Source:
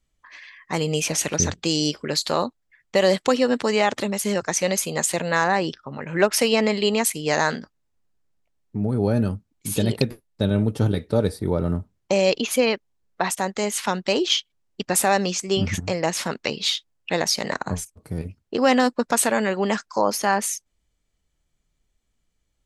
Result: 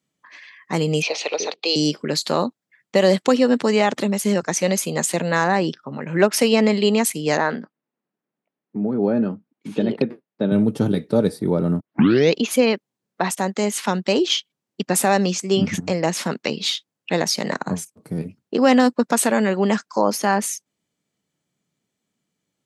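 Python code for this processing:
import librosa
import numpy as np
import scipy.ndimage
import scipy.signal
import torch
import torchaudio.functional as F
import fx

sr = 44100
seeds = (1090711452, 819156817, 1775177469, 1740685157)

y = fx.cabinet(x, sr, low_hz=430.0, low_slope=24, high_hz=4900.0, hz=(460.0, 770.0, 1600.0, 2500.0, 4200.0), db=(6, 4, -10, 7, 9), at=(1.02, 1.76))
y = fx.bandpass_edges(y, sr, low_hz=210.0, high_hz=2400.0, at=(7.37, 10.52))
y = fx.edit(y, sr, fx.tape_start(start_s=11.8, length_s=0.55), tone=tone)
y = scipy.signal.sosfilt(scipy.signal.butter(4, 160.0, 'highpass', fs=sr, output='sos'), y)
y = fx.low_shelf(y, sr, hz=290.0, db=9.5)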